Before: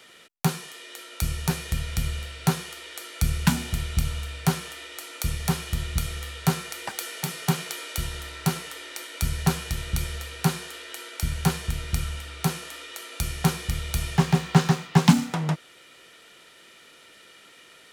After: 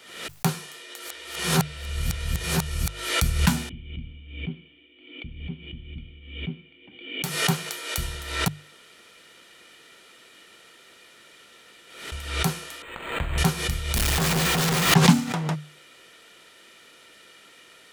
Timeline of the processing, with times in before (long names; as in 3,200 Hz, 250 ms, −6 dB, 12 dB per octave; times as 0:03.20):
0:00.99–0:03.09: reverse
0:03.69–0:07.24: formant resonators in series i
0:08.48–0:12.12: fill with room tone
0:12.82–0:13.38: linearly interpolated sample-rate reduction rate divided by 8×
0:13.96–0:14.94: sign of each sample alone
whole clip: mains-hum notches 50/100/150 Hz; background raised ahead of every attack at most 72 dB per second